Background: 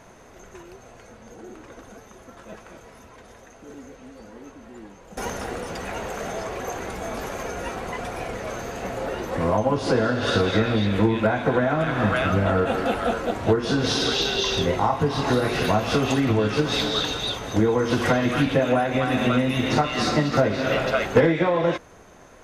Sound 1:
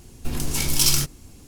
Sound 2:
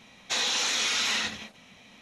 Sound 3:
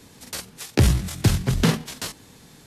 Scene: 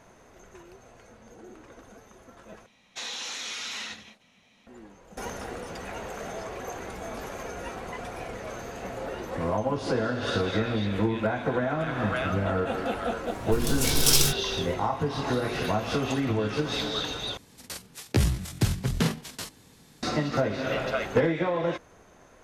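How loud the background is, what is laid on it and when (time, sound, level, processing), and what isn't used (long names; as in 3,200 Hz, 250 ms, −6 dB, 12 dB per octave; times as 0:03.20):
background −6 dB
0:02.66: overwrite with 2 −8.5 dB
0:13.27: mix in 1 −2 dB
0:17.37: overwrite with 3 −6 dB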